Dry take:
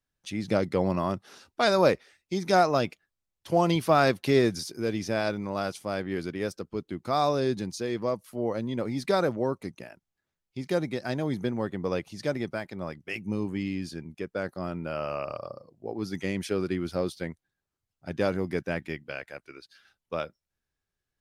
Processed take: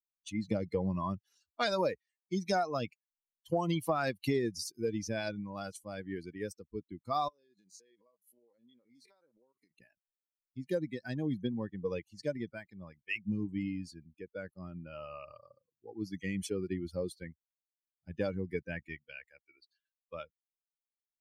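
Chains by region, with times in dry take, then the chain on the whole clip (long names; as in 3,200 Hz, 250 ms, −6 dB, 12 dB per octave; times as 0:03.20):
0:07.28–0:09.72: spectrum averaged block by block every 50 ms + high-pass filter 490 Hz 6 dB per octave + downward compressor 10 to 1, threshold −41 dBFS
whole clip: spectral dynamics exaggerated over time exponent 2; downward compressor 6 to 1, threshold −31 dBFS; level +3 dB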